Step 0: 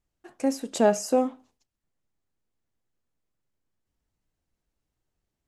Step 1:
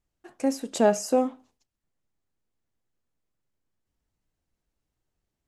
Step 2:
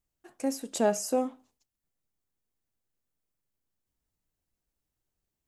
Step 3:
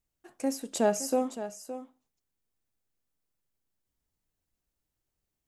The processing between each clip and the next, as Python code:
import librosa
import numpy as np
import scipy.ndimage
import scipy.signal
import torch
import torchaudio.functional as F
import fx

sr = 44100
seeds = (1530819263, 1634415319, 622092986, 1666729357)

y1 = x
y2 = fx.high_shelf(y1, sr, hz=8400.0, db=11.0)
y2 = F.gain(torch.from_numpy(y2), -5.0).numpy()
y3 = y2 + 10.0 ** (-12.0 / 20.0) * np.pad(y2, (int(566 * sr / 1000.0), 0))[:len(y2)]